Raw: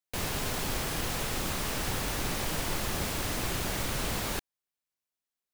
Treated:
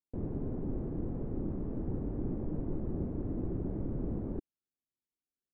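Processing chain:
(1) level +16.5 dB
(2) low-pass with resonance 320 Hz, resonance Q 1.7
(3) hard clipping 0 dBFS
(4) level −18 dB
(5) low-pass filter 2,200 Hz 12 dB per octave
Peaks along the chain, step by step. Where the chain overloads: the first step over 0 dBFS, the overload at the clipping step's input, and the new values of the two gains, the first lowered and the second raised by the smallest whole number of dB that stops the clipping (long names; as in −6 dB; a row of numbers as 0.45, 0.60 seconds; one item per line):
−2.0, −5.5, −5.5, −23.5, −23.5 dBFS
no step passes full scale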